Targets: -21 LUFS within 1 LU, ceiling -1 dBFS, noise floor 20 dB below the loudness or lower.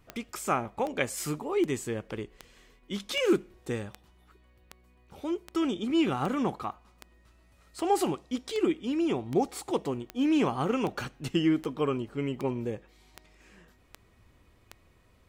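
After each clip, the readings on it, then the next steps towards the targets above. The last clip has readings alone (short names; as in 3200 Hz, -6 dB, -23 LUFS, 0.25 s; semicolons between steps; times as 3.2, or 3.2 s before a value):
clicks 20; loudness -30.5 LUFS; peak -13.0 dBFS; loudness target -21.0 LUFS
-> de-click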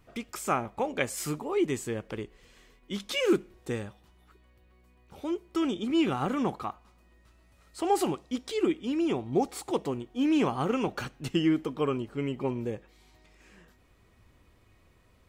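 clicks 0; loudness -30.5 LUFS; peak -13.0 dBFS; loudness target -21.0 LUFS
-> gain +9.5 dB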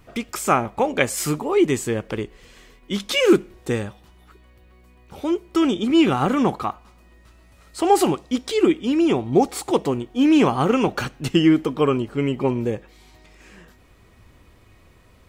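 loudness -21.0 LUFS; peak -3.5 dBFS; noise floor -53 dBFS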